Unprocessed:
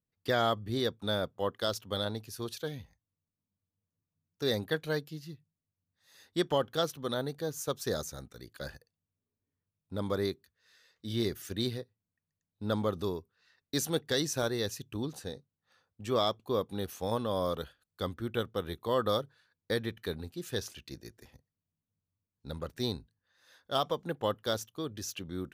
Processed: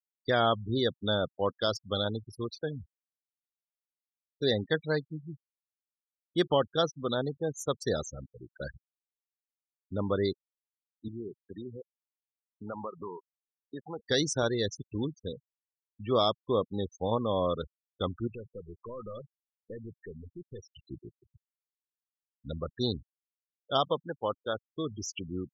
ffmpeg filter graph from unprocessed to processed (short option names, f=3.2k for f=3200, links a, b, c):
-filter_complex "[0:a]asettb=1/sr,asplit=3[a][b][c];[a]atrim=end=11.084[d];[b]atrim=start=11.08:end=13.99,asetpts=PTS-STARTPTS,afade=t=in:d=0.004:c=qsin,afade=t=out:st=2.906:d=0.004:c=qsin,equalizer=f=950:w=1.1:g=13.5,acompressor=threshold=-44dB:ratio=2.5:attack=3.2:release=140:knee=1:detection=peak,highpass=110,lowpass=3.4k[e];[c]atrim=start=13.986[f];[d][e]acrossfade=d=0.004:c1=hsin:c2=qsin[g];[g][f]acrossfade=d=0.004:c1=qsin:c2=hsin,asettb=1/sr,asplit=3[h][i][j];[h]atrim=end=18.274[k];[i]atrim=start=18.27:end=20.91,asetpts=PTS-STARTPTS,afade=t=in:d=0.004:c=qsin,afade=t=out:st=2.636:d=0.004:c=qsin,acompressor=threshold=-41dB:ratio=2:attack=3.2:release=140:knee=1:detection=peak,aeval=exprs='(tanh(89.1*val(0)+0.2)-tanh(0.2))/89.1':c=same[l];[j]atrim=start=20.906[m];[k][l]acrossfade=d=0.004:c1=hsin:c2=qsin[n];[n][m]acrossfade=d=0.004:c1=qsin:c2=hsin,asettb=1/sr,asplit=3[o][p][q];[o]atrim=end=24.024[r];[p]atrim=start=24.02:end=24.71,asetpts=PTS-STARTPTS,afade=t=in:d=0.004:c=qsin,afade=t=out:st=0.686:d=0.004:c=qsin,lowpass=3.4k,lowshelf=f=440:g=-8.5,adynamicsmooth=sensitivity=3:basefreq=2.5k[s];[q]atrim=start=24.706[t];[r][s]acrossfade=d=0.004:c1=hsin:c2=qsin[u];[u][t]acrossfade=d=0.004:c1=qsin:c2=hsin,afftfilt=real='re*gte(hypot(re,im),0.0178)':imag='im*gte(hypot(re,im),0.0178)':win_size=1024:overlap=0.75,dynaudnorm=f=180:g=3:m=7dB,volume=-4dB"